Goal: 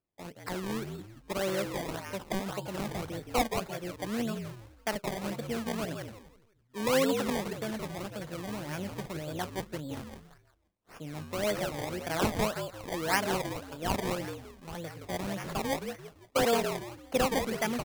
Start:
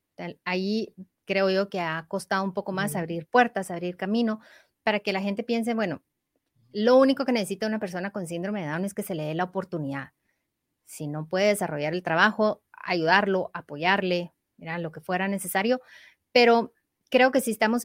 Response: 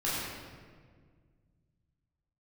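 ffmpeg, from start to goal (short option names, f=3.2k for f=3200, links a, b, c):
-filter_complex "[0:a]asplit=5[a][b][c][d][e];[b]adelay=170,afreqshift=-55,volume=-6dB[f];[c]adelay=340,afreqshift=-110,volume=-15.6dB[g];[d]adelay=510,afreqshift=-165,volume=-25.3dB[h];[e]adelay=680,afreqshift=-220,volume=-34.9dB[i];[a][f][g][h][i]amix=inputs=5:normalize=0,asettb=1/sr,asplit=3[j][k][l];[j]atrim=end=15.464[m];[k]atrim=start=15.46:end=16.45,asetpts=PTS-STARTPTS,afade=t=in:d=0.004:c=qsin,afade=t=out:st=0.986:d=0.004:c=qsin,afreqshift=24[n];[l]atrim=start=16.446[o];[m][n]acrossfade=d=0.004:c1=hsin:c2=qsin[p];[p][o]acrossfade=d=0.004:c1=qsin:c2=hsin,acrusher=samples=22:mix=1:aa=0.000001:lfo=1:lforange=22:lforate=1.8,volume=-8.5dB"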